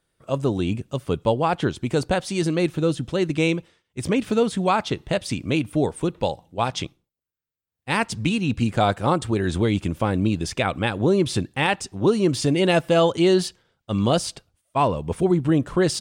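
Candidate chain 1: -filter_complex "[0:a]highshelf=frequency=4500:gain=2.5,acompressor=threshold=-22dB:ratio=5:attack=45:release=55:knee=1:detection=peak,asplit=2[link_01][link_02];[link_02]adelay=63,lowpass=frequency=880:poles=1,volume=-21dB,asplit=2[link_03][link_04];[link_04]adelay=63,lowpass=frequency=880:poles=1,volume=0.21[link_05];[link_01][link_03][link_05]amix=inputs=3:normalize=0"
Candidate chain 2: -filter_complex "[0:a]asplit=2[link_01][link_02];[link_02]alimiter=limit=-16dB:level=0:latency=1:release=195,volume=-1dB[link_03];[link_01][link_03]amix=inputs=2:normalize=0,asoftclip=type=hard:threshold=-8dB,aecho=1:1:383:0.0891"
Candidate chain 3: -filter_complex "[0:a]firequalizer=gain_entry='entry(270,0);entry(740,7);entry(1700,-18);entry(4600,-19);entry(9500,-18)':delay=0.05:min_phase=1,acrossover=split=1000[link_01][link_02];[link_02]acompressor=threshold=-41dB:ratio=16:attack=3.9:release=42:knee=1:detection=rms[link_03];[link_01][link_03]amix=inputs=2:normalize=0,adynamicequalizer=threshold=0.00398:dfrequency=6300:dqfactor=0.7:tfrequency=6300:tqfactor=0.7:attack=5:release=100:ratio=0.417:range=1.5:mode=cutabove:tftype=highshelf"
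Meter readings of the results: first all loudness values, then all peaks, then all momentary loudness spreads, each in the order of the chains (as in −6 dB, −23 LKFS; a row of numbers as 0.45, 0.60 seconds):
−24.0, −19.5, −21.5 LKFS; −7.5, −7.5, −6.5 dBFS; 5, 7, 8 LU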